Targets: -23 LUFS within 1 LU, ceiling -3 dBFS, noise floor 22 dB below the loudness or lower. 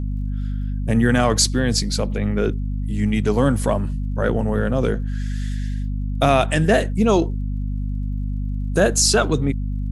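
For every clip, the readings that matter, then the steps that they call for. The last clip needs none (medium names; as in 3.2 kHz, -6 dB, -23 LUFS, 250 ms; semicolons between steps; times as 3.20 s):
tick rate 46 per s; hum 50 Hz; highest harmonic 250 Hz; hum level -21 dBFS; loudness -21.0 LUFS; peak level -2.0 dBFS; loudness target -23.0 LUFS
-> de-click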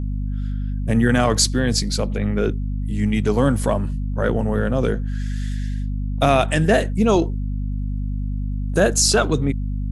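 tick rate 0 per s; hum 50 Hz; highest harmonic 250 Hz; hum level -21 dBFS
-> hum notches 50/100/150/200/250 Hz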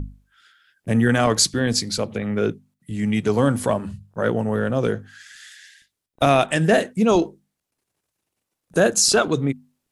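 hum not found; loudness -20.5 LUFS; peak level -2.5 dBFS; loudness target -23.0 LUFS
-> trim -2.5 dB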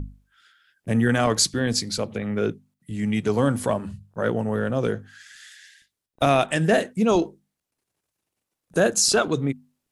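loudness -23.0 LUFS; peak level -5.0 dBFS; noise floor -84 dBFS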